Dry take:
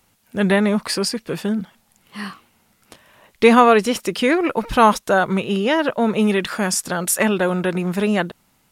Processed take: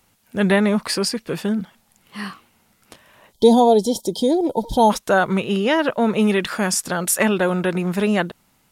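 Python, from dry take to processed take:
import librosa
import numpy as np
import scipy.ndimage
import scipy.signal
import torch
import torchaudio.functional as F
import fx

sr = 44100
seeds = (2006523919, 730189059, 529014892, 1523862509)

y = fx.spec_box(x, sr, start_s=3.33, length_s=1.58, low_hz=990.0, high_hz=3100.0, gain_db=-28)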